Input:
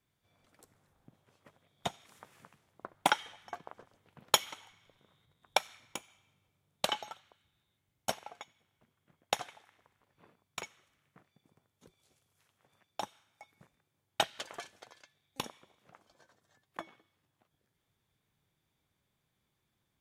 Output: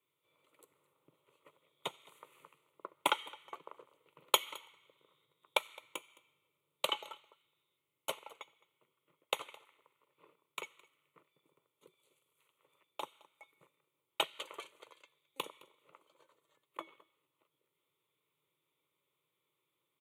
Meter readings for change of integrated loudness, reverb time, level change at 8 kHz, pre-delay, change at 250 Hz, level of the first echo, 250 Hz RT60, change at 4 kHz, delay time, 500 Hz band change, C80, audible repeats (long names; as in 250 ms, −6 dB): −2.5 dB, no reverb audible, −6.0 dB, no reverb audible, −6.0 dB, −22.5 dB, no reverb audible, −1.5 dB, 214 ms, −2.5 dB, no reverb audible, 1